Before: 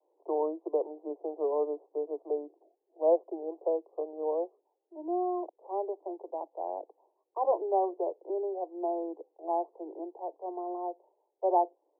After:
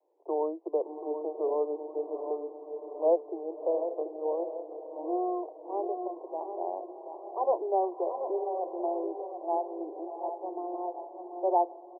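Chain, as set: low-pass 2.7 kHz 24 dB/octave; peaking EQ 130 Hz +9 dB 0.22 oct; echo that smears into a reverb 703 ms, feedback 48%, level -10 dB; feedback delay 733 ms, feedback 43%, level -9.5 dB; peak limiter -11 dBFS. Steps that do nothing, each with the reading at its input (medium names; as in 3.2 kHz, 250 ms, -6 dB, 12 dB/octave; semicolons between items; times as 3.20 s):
low-pass 2.7 kHz: input has nothing above 1.1 kHz; peaking EQ 130 Hz: input has nothing below 270 Hz; peak limiter -11 dBFS: peak at its input -14.5 dBFS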